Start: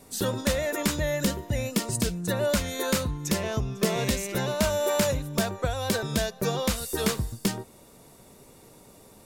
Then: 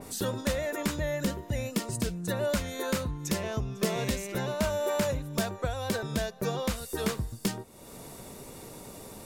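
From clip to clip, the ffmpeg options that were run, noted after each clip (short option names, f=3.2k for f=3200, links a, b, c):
-af "acompressor=mode=upward:threshold=-30dB:ratio=2.5,adynamicequalizer=threshold=0.00708:dfrequency=2700:dqfactor=0.7:tfrequency=2700:tqfactor=0.7:attack=5:release=100:ratio=0.375:range=2.5:mode=cutabove:tftype=highshelf,volume=-3.5dB"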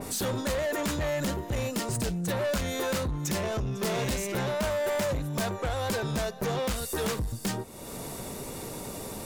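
-af "asoftclip=type=tanh:threshold=-33.5dB,volume=7.5dB"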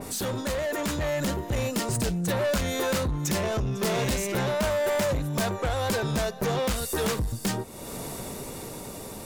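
-af "dynaudnorm=f=170:g=13:m=3dB"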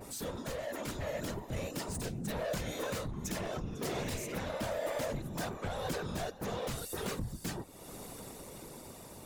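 -af "afftfilt=real='hypot(re,im)*cos(2*PI*random(0))':imag='hypot(re,im)*sin(2*PI*random(1))':win_size=512:overlap=0.75,volume=-4.5dB"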